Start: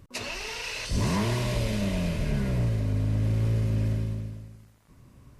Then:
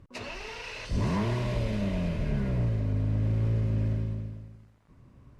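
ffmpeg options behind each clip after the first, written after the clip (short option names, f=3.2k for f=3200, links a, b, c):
-af "aemphasis=mode=reproduction:type=75kf,volume=-1.5dB"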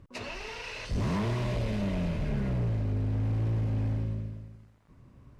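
-af "asoftclip=type=hard:threshold=-25.5dB"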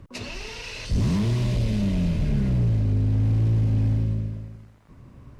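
-filter_complex "[0:a]acrossover=split=330|3000[a][b][c];[b]acompressor=threshold=-57dB:ratio=2[d];[a][d][c]amix=inputs=3:normalize=0,volume=8dB"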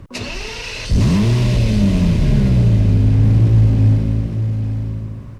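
-af "aecho=1:1:858:0.398,volume=8.5dB"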